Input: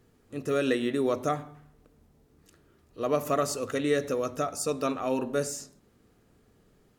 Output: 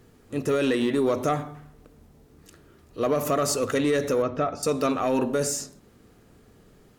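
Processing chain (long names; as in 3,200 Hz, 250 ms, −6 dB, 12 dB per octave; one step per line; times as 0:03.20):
brickwall limiter −21 dBFS, peak gain reduction 7.5 dB
soft clipping −22.5 dBFS, distortion −20 dB
0:04.22–0:04.63: high-frequency loss of the air 260 metres
level +8 dB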